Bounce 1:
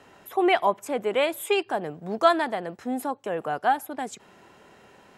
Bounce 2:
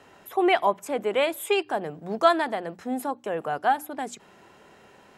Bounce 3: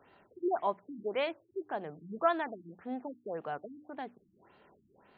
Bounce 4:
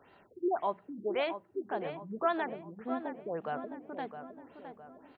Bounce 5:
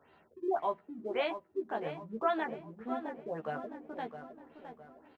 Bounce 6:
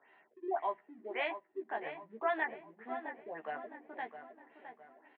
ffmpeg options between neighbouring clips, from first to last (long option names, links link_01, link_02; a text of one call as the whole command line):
ffmpeg -i in.wav -af "bandreject=frequency=60:width_type=h:width=6,bandreject=frequency=120:width_type=h:width=6,bandreject=frequency=180:width_type=h:width=6,bandreject=frequency=240:width_type=h:width=6,bandreject=frequency=300:width_type=h:width=6" out.wav
ffmpeg -i in.wav -af "afftfilt=real='re*lt(b*sr/1024,330*pow(4900/330,0.5+0.5*sin(2*PI*1.8*pts/sr)))':imag='im*lt(b*sr/1024,330*pow(4900/330,0.5+0.5*sin(2*PI*1.8*pts/sr)))':win_size=1024:overlap=0.75,volume=-9dB" out.wav
ffmpeg -i in.wav -filter_complex "[0:a]asplit=2[link_01][link_02];[link_02]alimiter=level_in=2dB:limit=-24dB:level=0:latency=1:release=64,volume=-2dB,volume=2dB[link_03];[link_01][link_03]amix=inputs=2:normalize=0,asplit=2[link_04][link_05];[link_05]adelay=662,lowpass=frequency=2300:poles=1,volume=-9dB,asplit=2[link_06][link_07];[link_07]adelay=662,lowpass=frequency=2300:poles=1,volume=0.47,asplit=2[link_08][link_09];[link_09]adelay=662,lowpass=frequency=2300:poles=1,volume=0.47,asplit=2[link_10][link_11];[link_11]adelay=662,lowpass=frequency=2300:poles=1,volume=0.47,asplit=2[link_12][link_13];[link_13]adelay=662,lowpass=frequency=2300:poles=1,volume=0.47[link_14];[link_04][link_06][link_08][link_10][link_12][link_14]amix=inputs=6:normalize=0,volume=-5.5dB" out.wav
ffmpeg -i in.wav -filter_complex "[0:a]asplit=2[link_01][link_02];[link_02]aeval=exprs='sgn(val(0))*max(abs(val(0))-0.002,0)':channel_layout=same,volume=-7.5dB[link_03];[link_01][link_03]amix=inputs=2:normalize=0,asplit=2[link_04][link_05];[link_05]adelay=13,volume=-3dB[link_06];[link_04][link_06]amix=inputs=2:normalize=0,volume=-5dB" out.wav
ffmpeg -i in.wav -af "highpass=440,equalizer=frequency=510:width_type=q:width=4:gain=-8,equalizer=frequency=1300:width_type=q:width=4:gain=-7,equalizer=frequency=1900:width_type=q:width=4:gain=9,lowpass=frequency=3000:width=0.5412,lowpass=frequency=3000:width=1.3066" out.wav